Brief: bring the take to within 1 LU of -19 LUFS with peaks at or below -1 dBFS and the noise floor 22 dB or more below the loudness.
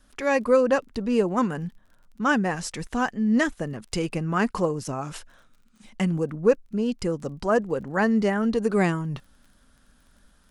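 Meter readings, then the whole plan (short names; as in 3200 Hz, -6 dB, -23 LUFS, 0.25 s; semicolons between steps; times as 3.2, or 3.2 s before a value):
ticks 26/s; loudness -25.0 LUFS; peak -7.5 dBFS; loudness target -19.0 LUFS
-> de-click; gain +6 dB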